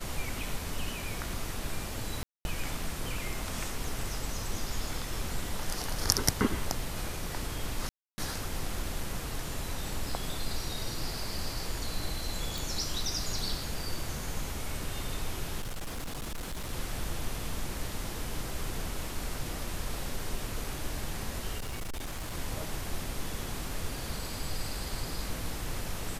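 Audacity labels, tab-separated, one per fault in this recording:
2.230000	2.450000	drop-out 221 ms
7.890000	8.180000	drop-out 290 ms
12.580000	12.580000	click
15.620000	16.730000	clipping −32.5 dBFS
21.580000	22.340000	clipping −32.5 dBFS

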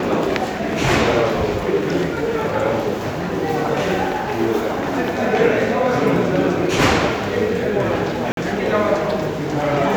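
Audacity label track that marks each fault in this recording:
8.320000	8.370000	drop-out 52 ms

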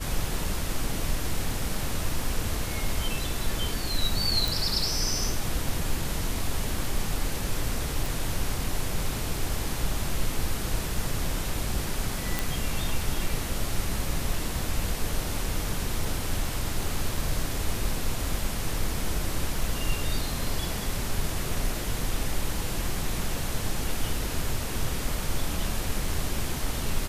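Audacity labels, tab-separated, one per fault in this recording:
4.480000	4.480000	click
8.060000	8.060000	click
12.390000	12.390000	click

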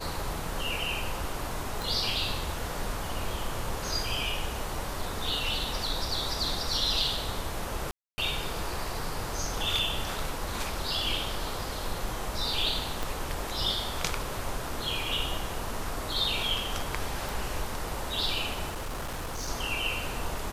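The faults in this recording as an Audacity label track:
1.820000	1.820000	click
7.910000	8.180000	drop-out 270 ms
13.030000	13.030000	click
17.290000	17.290000	click
18.690000	19.490000	clipping −31 dBFS

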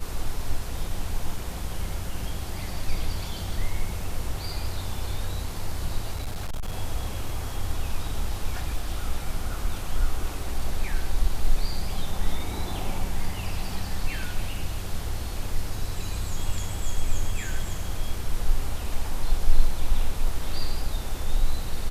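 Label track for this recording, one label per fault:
6.140000	6.750000	clipping −25.5 dBFS

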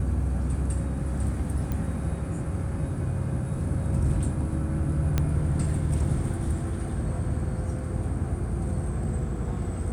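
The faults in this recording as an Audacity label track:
1.720000	1.720000	click −18 dBFS
5.180000	5.180000	click −11 dBFS

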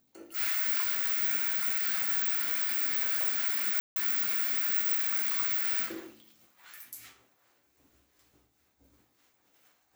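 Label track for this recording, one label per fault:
3.800000	3.960000	drop-out 161 ms

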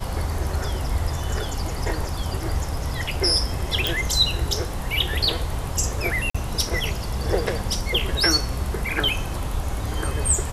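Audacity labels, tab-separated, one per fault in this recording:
3.870000	3.870000	click
6.300000	6.340000	drop-out 45 ms

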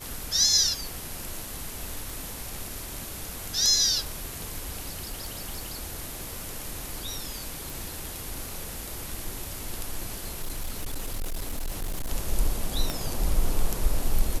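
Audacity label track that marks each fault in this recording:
2.100000	2.100000	click
4.920000	6.300000	clipping −28 dBFS
7.700000	7.700000	click
10.140000	12.100000	clipping −26.5 dBFS
12.900000	12.900000	click −13 dBFS

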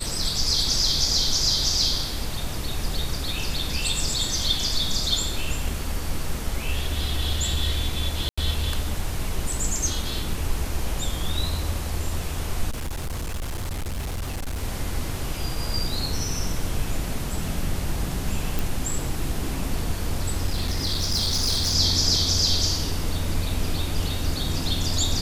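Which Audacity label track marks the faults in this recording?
8.290000	8.380000	drop-out 85 ms
12.710000	14.640000	clipping −25.5 dBFS
18.590000	18.590000	click
20.470000	21.750000	clipping −19.5 dBFS

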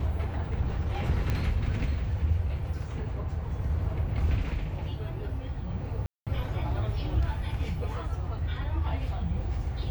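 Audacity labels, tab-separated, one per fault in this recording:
1.300000	1.300000	click −17 dBFS
6.060000	6.270000	drop-out 207 ms

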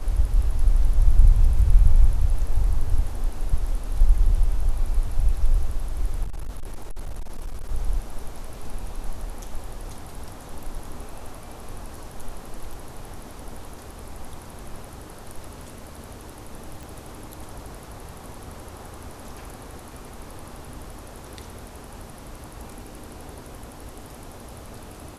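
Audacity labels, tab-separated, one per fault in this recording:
6.230000	7.700000	clipping −26 dBFS
16.830000	16.830000	click

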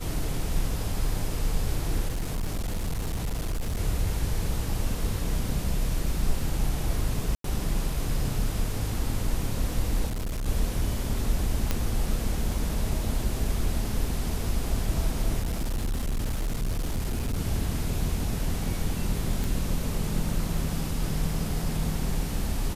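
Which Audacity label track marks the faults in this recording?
2.080000	3.780000	clipping −25 dBFS
7.350000	7.440000	drop-out 93 ms
10.060000	10.480000	clipping −27 dBFS
11.710000	11.710000	click −10 dBFS
15.410000	17.390000	clipping −24 dBFS
19.440000	19.440000	click

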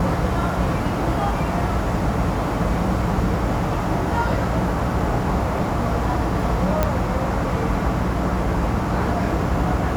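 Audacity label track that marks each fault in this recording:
6.830000	6.830000	click −6 dBFS

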